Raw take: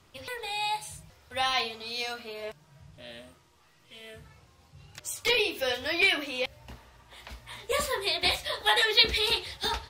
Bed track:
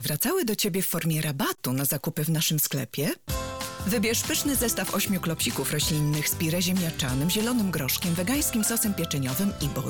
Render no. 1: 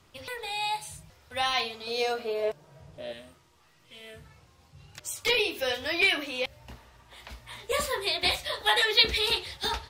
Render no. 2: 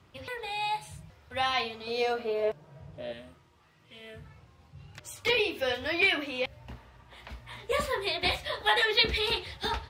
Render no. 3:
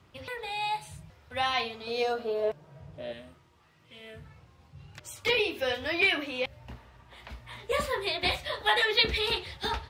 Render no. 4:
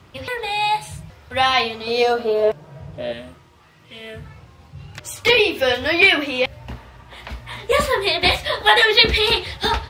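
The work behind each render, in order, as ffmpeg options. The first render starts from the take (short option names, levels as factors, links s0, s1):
-filter_complex "[0:a]asettb=1/sr,asplit=3[s0][s1][s2];[s0]atrim=end=1.874[s3];[s1]atrim=start=1.87:end=3.13,asetpts=PTS-STARTPTS,afade=t=in:d=0.004:c=qsin,afade=t=out:st=1.256:d=0.004:c=qsin,equalizer=f=500:w=1:g=12.5[s4];[s2]atrim=start=3.126[s5];[s3][s4]acrossfade=d=0.004:c1=hsin:c2=qsin[s6];[s6][s5]acrossfade=d=0.004:c1=qsin:c2=hsin"
-af "highpass=56,bass=f=250:g=4,treble=f=4000:g=-9"
-filter_complex "[0:a]asettb=1/sr,asplit=3[s0][s1][s2];[s0]atrim=end=2.034[s3];[s1]atrim=start=2.03:end=2.5,asetpts=PTS-STARTPTS,afade=t=in:d=0.004:c=qsin,afade=t=out:st=0.466:d=0.004:c=qsin,equalizer=f=2300:w=4.1:g=-11.5[s4];[s2]atrim=start=2.496[s5];[s3][s4]acrossfade=d=0.004:c1=hsin:c2=qsin[s6];[s6][s5]acrossfade=d=0.004:c1=qsin:c2=hsin"
-af "volume=3.76,alimiter=limit=0.891:level=0:latency=1"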